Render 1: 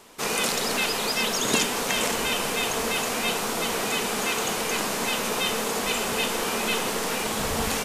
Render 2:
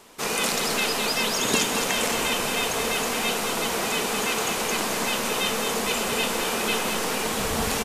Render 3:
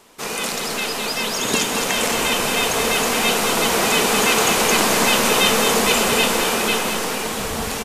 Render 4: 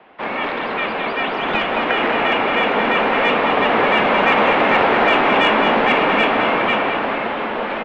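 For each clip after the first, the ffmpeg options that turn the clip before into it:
ffmpeg -i in.wav -af "aecho=1:1:215:0.473" out.wav
ffmpeg -i in.wav -af "dynaudnorm=framelen=400:gausssize=9:maxgain=11.5dB" out.wav
ffmpeg -i in.wav -filter_complex "[0:a]highpass=frequency=270:width_type=q:width=0.5412,highpass=frequency=270:width_type=q:width=1.307,lowpass=frequency=3600:width_type=q:width=0.5176,lowpass=frequency=3600:width_type=q:width=0.7071,lowpass=frequency=3600:width_type=q:width=1.932,afreqshift=-230,acontrast=66,acrossover=split=280 2300:gain=0.126 1 0.224[link_01][link_02][link_03];[link_01][link_02][link_03]amix=inputs=3:normalize=0,volume=1dB" out.wav

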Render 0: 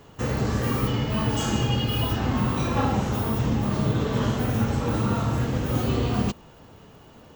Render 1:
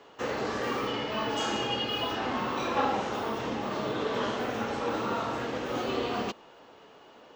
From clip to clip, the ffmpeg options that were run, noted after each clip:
ffmpeg -i in.wav -filter_complex "[0:a]acrossover=split=300 5900:gain=0.0708 1 0.1[link_01][link_02][link_03];[link_01][link_02][link_03]amix=inputs=3:normalize=0" out.wav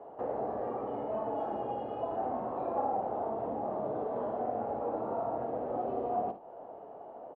ffmpeg -i in.wav -af "acompressor=threshold=-44dB:ratio=2,lowpass=frequency=710:width_type=q:width=4.4,aecho=1:1:56|77:0.266|0.133" out.wav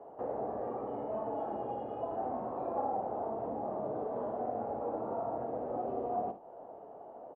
ffmpeg -i in.wav -af "highshelf=frequency=2400:gain=-9,volume=-1.5dB" out.wav

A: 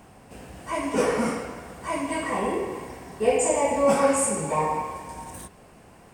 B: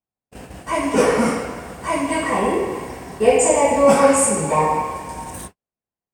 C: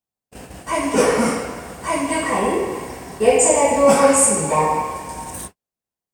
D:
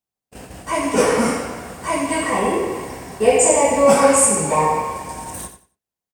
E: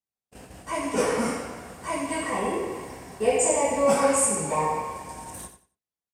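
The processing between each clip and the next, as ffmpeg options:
ffmpeg -i in.wav -af "agate=range=-51dB:threshold=-42dB:ratio=16:detection=peak,volume=7dB" out.wav
ffmpeg -i in.wav -af "bass=frequency=250:gain=-1,treble=frequency=4000:gain=4" out.wav
ffmpeg -i in.wav -af "aecho=1:1:91|182|273:0.282|0.0592|0.0124" out.wav
ffmpeg -i in.wav -af "aresample=32000,aresample=44100,volume=-8dB" out.wav

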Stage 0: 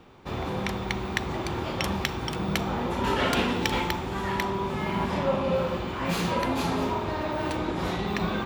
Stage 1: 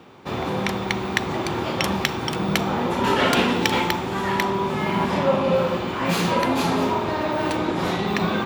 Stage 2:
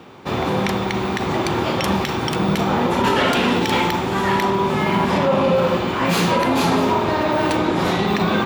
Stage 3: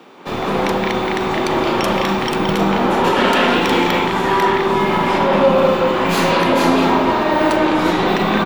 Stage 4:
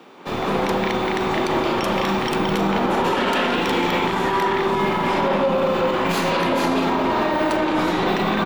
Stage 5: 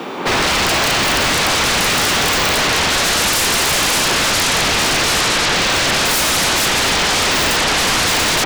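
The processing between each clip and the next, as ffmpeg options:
ffmpeg -i in.wav -af "highpass=120,volume=6dB" out.wav
ffmpeg -i in.wav -af "alimiter=limit=-13.5dB:level=0:latency=1:release=40,volume=5dB" out.wav
ffmpeg -i in.wav -filter_complex "[0:a]acrossover=split=180|4300[link_01][link_02][link_03];[link_01]acrusher=bits=4:dc=4:mix=0:aa=0.000001[link_04];[link_02]aecho=1:1:172|207:0.891|0.891[link_05];[link_04][link_05][link_03]amix=inputs=3:normalize=0" out.wav
ffmpeg -i in.wav -af "alimiter=limit=-9dB:level=0:latency=1:release=32,volume=-2.5dB" out.wav
ffmpeg -i in.wav -af "aeval=exprs='0.282*sin(PI/2*7.08*val(0)/0.282)':channel_layout=same,volume=-1.5dB" out.wav

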